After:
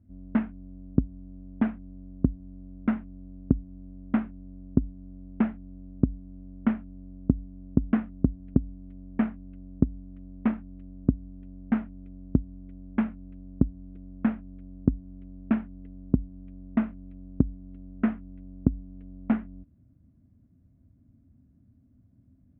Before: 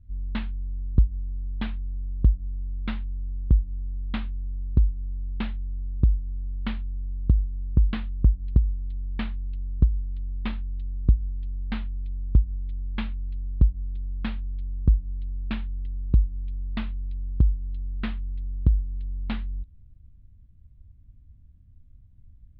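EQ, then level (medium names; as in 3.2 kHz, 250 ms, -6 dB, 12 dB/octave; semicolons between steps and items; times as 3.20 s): distance through air 260 m; cabinet simulation 200–2300 Hz, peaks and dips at 260 Hz +10 dB, 420 Hz +3 dB, 660 Hz +8 dB, 1.4 kHz +4 dB; bass shelf 470 Hz +8.5 dB; 0.0 dB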